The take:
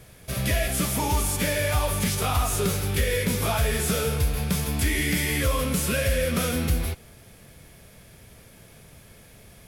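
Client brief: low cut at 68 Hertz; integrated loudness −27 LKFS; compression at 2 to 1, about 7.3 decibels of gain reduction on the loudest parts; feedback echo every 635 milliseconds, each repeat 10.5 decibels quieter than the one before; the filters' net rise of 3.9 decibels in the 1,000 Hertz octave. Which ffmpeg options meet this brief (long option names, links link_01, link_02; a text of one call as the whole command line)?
ffmpeg -i in.wav -af "highpass=68,equalizer=frequency=1000:width_type=o:gain=5,acompressor=threshold=-33dB:ratio=2,aecho=1:1:635|1270|1905:0.299|0.0896|0.0269,volume=3.5dB" out.wav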